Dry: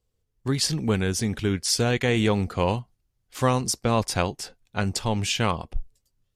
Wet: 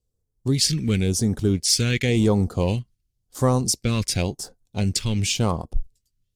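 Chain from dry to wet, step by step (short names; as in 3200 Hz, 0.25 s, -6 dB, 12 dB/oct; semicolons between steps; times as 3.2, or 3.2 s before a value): sample leveller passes 1; phaser stages 2, 0.94 Hz, lowest notch 750–2500 Hz; dynamic EQ 2200 Hz, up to +6 dB, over -49 dBFS, Q 4.5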